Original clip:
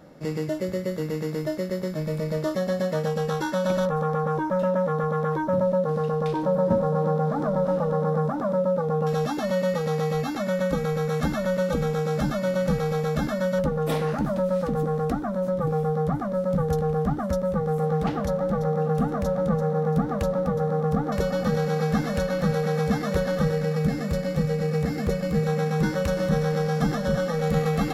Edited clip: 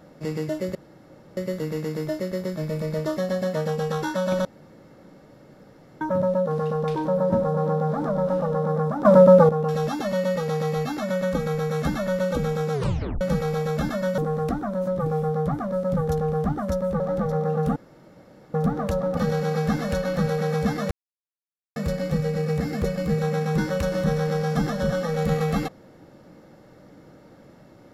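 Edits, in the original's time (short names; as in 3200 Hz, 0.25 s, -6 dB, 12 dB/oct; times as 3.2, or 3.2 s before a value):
0.75 insert room tone 0.62 s
3.83–5.39 room tone
8.43–8.87 gain +11.5 dB
12.11 tape stop 0.48 s
13.56–14.79 cut
17.61–18.32 cut
19.08–19.86 room tone
20.49–21.42 cut
23.16–24.01 mute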